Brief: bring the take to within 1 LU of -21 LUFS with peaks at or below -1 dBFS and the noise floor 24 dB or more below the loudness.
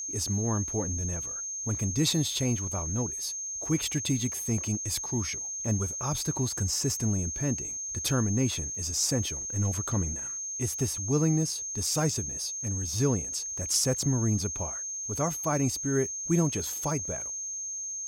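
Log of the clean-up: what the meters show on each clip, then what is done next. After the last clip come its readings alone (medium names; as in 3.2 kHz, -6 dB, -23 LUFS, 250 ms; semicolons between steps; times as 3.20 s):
tick rate 23 per s; steady tone 6.4 kHz; tone level -33 dBFS; loudness -28.5 LUFS; peak level -14.0 dBFS; loudness target -21.0 LUFS
-> de-click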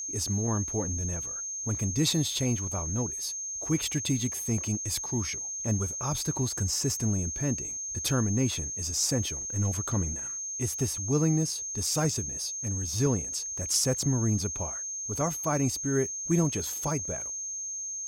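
tick rate 0.22 per s; steady tone 6.4 kHz; tone level -33 dBFS
-> band-stop 6.4 kHz, Q 30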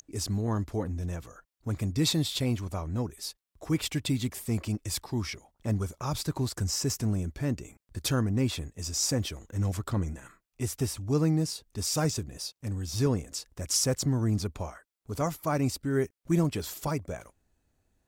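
steady tone not found; loudness -30.5 LUFS; peak level -14.5 dBFS; loudness target -21.0 LUFS
-> trim +9.5 dB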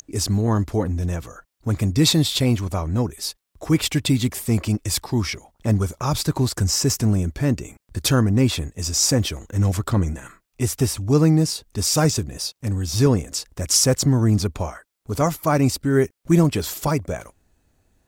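loudness -21.0 LUFS; peak level -5.0 dBFS; noise floor -72 dBFS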